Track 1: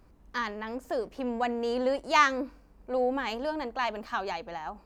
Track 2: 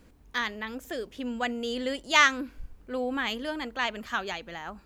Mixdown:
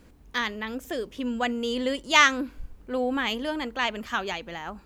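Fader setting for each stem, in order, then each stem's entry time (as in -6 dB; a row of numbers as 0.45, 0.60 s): -10.0, +2.5 dB; 0.00, 0.00 s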